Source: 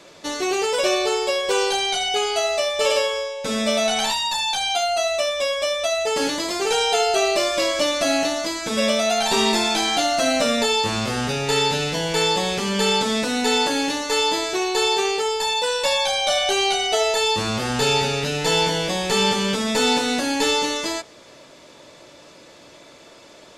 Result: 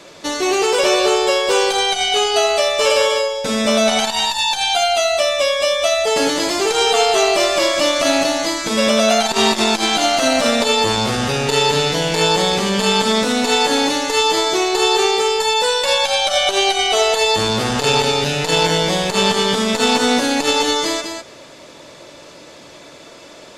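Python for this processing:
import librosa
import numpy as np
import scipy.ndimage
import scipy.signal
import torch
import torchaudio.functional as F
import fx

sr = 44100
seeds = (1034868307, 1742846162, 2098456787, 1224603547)

y = x + 10.0 ** (-7.0 / 20.0) * np.pad(x, (int(200 * sr / 1000.0), 0))[:len(x)]
y = fx.transformer_sat(y, sr, knee_hz=630.0)
y = y * librosa.db_to_amplitude(5.5)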